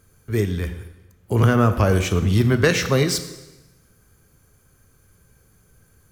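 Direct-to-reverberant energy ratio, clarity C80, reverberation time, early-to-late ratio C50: 9.0 dB, 13.0 dB, 1.1 s, 11.0 dB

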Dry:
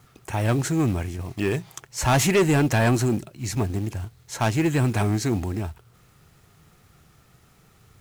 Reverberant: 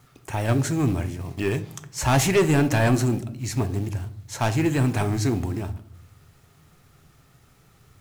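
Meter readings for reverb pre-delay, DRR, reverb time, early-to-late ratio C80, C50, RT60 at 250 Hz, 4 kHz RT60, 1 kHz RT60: 3 ms, 10.0 dB, 0.65 s, 19.0 dB, 15.0 dB, 0.95 s, 0.40 s, 0.60 s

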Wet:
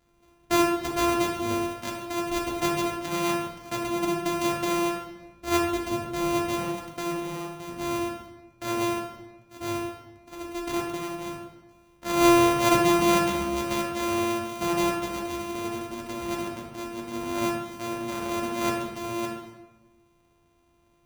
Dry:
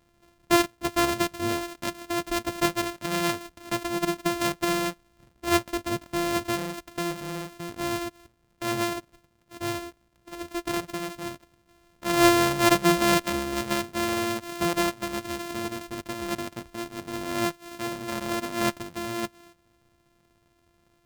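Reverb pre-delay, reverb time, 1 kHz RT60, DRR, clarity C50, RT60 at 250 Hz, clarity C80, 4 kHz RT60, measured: 4 ms, 1.1 s, 1.1 s, −2.0 dB, 3.0 dB, 1.3 s, 5.5 dB, 0.75 s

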